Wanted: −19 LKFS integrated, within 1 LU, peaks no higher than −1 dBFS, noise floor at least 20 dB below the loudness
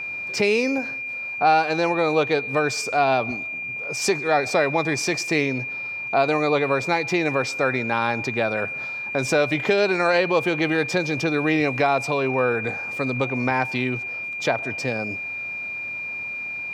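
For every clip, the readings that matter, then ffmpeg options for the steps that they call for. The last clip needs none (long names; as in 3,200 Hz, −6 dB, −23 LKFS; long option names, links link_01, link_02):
interfering tone 2,400 Hz; level of the tone −28 dBFS; integrated loudness −22.5 LKFS; sample peak −6.5 dBFS; target loudness −19.0 LKFS
→ -af "bandreject=frequency=2400:width=30"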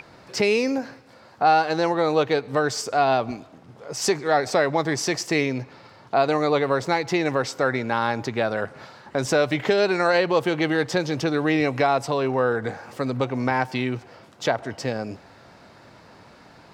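interfering tone none found; integrated loudness −23.0 LKFS; sample peak −7.5 dBFS; target loudness −19.0 LKFS
→ -af "volume=4dB"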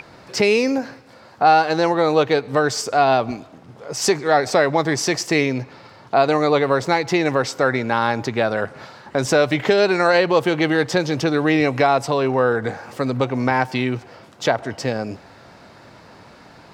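integrated loudness −19.0 LKFS; sample peak −3.5 dBFS; background noise floor −46 dBFS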